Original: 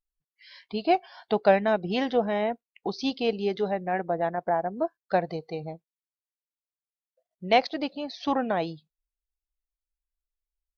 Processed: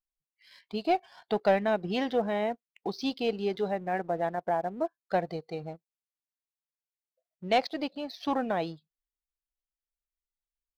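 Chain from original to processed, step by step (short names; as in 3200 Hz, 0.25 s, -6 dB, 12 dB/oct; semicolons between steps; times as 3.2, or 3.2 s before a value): sample leveller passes 1; gain -6.5 dB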